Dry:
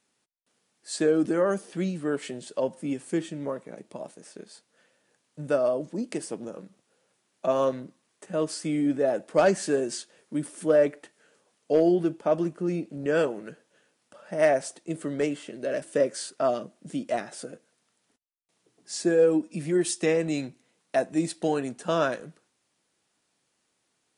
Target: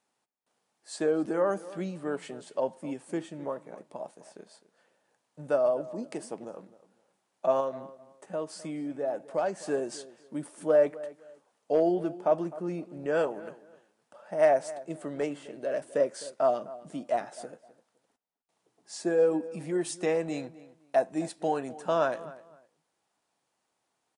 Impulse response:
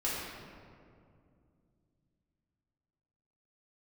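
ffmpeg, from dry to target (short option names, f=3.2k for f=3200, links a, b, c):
-filter_complex "[0:a]asettb=1/sr,asplit=3[a][b][c];[a]atrim=end=7.604[d];[b]atrim=start=7.6:end=9.68,asetpts=PTS-STARTPTS,afade=t=in:d=0.004:c=qsin,afade=t=out:st=2.076:d=0.004:c=qsin,acompressor=threshold=-30dB:ratio=2[e];[c]atrim=start=9.676[f];[d][e]acrossfade=d=0.004:c1=hsin:c2=qsin[g];[g][f]acrossfade=d=0.004:c1=qsin:c2=hsin,equalizer=f=820:w=1.1:g=10,asplit=2[h][i];[i]adelay=257,lowpass=f=2.7k:p=1,volume=-17.5dB,asplit=2[j][k];[k]adelay=257,lowpass=f=2.7k:p=1,volume=0.24[l];[h][j][l]amix=inputs=3:normalize=0,volume=-7.5dB"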